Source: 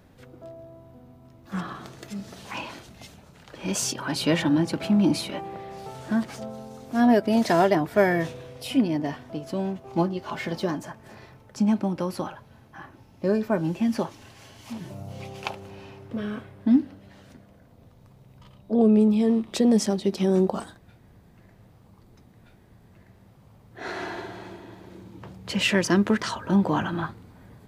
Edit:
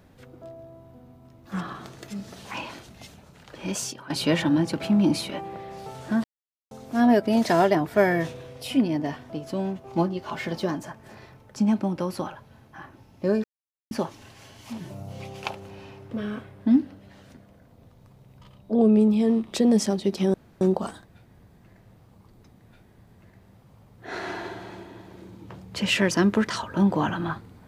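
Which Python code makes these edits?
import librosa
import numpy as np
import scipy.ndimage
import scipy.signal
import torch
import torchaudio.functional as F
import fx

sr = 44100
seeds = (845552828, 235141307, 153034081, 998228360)

y = fx.edit(x, sr, fx.fade_out_to(start_s=3.59, length_s=0.51, floor_db=-14.5),
    fx.silence(start_s=6.24, length_s=0.47),
    fx.silence(start_s=13.44, length_s=0.47),
    fx.insert_room_tone(at_s=20.34, length_s=0.27), tone=tone)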